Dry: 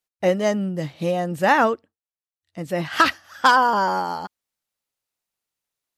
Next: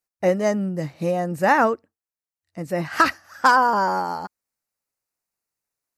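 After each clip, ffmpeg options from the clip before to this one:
-af "equalizer=f=3300:w=3.4:g=-14"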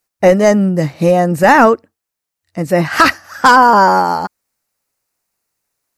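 -af "apsyclip=4.73,volume=0.841"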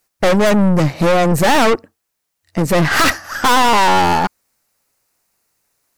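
-af "aeval=exprs='(tanh(10*val(0)+0.55)-tanh(0.55))/10':c=same,volume=2.82"

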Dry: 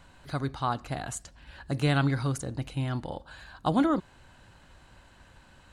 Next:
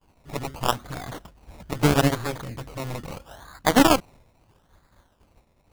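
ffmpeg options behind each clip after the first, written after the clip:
-af "acrusher=samples=22:mix=1:aa=0.000001:lfo=1:lforange=13.2:lforate=0.77,agate=range=0.0224:threshold=0.00447:ratio=3:detection=peak,aeval=exprs='0.237*(cos(1*acos(clip(val(0)/0.237,-1,1)))-cos(1*PI/2))+0.0211*(cos(5*acos(clip(val(0)/0.237,-1,1)))-cos(5*PI/2))+0.0596*(cos(6*acos(clip(val(0)/0.237,-1,1)))-cos(6*PI/2))+0.075*(cos(7*acos(clip(val(0)/0.237,-1,1)))-cos(7*PI/2))+0.0473*(cos(8*acos(clip(val(0)/0.237,-1,1)))-cos(8*PI/2))':c=same,volume=1.88"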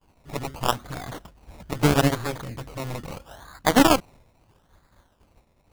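-af anull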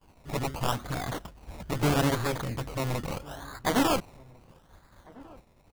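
-filter_complex "[0:a]asoftclip=type=tanh:threshold=0.0891,asplit=2[s0][s1];[s1]adelay=1399,volume=0.0708,highshelf=f=4000:g=-31.5[s2];[s0][s2]amix=inputs=2:normalize=0,volume=1.33"

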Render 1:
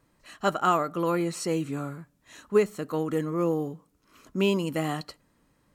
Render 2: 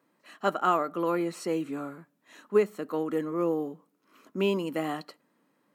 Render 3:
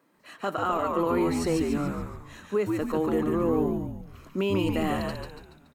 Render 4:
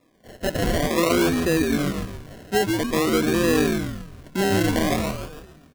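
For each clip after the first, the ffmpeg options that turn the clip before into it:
-af "highpass=f=200:w=0.5412,highpass=f=200:w=1.3066,equalizer=f=7100:w=0.59:g=-7.5,volume=0.891"
-filter_complex "[0:a]alimiter=limit=0.0794:level=0:latency=1:release=45,asplit=2[s0][s1];[s1]asplit=6[s2][s3][s4][s5][s6][s7];[s2]adelay=142,afreqshift=-92,volume=0.708[s8];[s3]adelay=284,afreqshift=-184,volume=0.331[s9];[s4]adelay=426,afreqshift=-276,volume=0.157[s10];[s5]adelay=568,afreqshift=-368,volume=0.0733[s11];[s6]adelay=710,afreqshift=-460,volume=0.0347[s12];[s7]adelay=852,afreqshift=-552,volume=0.0162[s13];[s8][s9][s10][s11][s12][s13]amix=inputs=6:normalize=0[s14];[s0][s14]amix=inputs=2:normalize=0,volume=1.58"
-af "acrusher=samples=29:mix=1:aa=0.000001:lfo=1:lforange=17.4:lforate=0.5,asuperstop=centerf=870:order=4:qfactor=6.2,volume=1.78"

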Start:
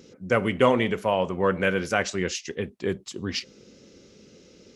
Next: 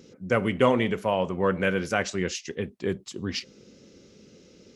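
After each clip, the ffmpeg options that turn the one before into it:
-af "equalizer=f=160:w=0.65:g=2.5,volume=0.794"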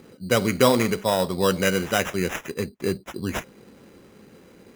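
-af "acrusher=samples=10:mix=1:aa=0.000001,volume=1.41"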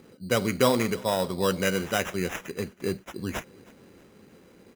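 -af "aecho=1:1:317|634|951:0.0668|0.0348|0.0181,volume=0.631"

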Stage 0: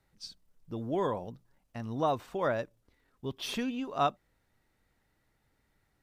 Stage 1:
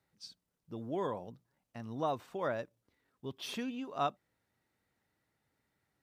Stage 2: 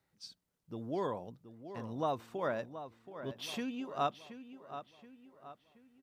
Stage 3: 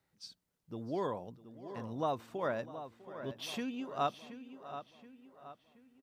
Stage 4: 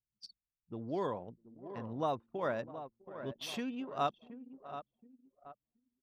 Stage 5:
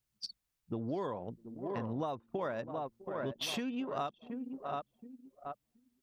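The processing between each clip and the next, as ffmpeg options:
-af "highpass=96,volume=0.562"
-filter_complex "[0:a]asplit=2[s0][s1];[s1]adelay=726,lowpass=f=4000:p=1,volume=0.266,asplit=2[s2][s3];[s3]adelay=726,lowpass=f=4000:p=1,volume=0.45,asplit=2[s4][s5];[s5]adelay=726,lowpass=f=4000:p=1,volume=0.45,asplit=2[s6][s7];[s7]adelay=726,lowpass=f=4000:p=1,volume=0.45,asplit=2[s8][s9];[s9]adelay=726,lowpass=f=4000:p=1,volume=0.45[s10];[s0][s2][s4][s6][s8][s10]amix=inputs=6:normalize=0"
-af "aecho=1:1:651:0.119"
-af "anlmdn=0.0158"
-af "acompressor=threshold=0.00708:ratio=10,volume=2.99"

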